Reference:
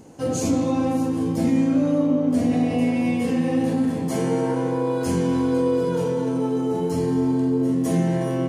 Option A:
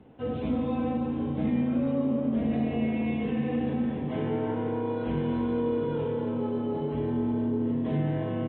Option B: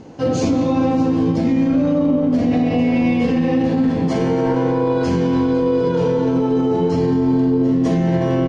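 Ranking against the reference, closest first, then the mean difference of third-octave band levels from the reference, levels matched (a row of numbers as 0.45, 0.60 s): B, A; 3.0, 5.5 dB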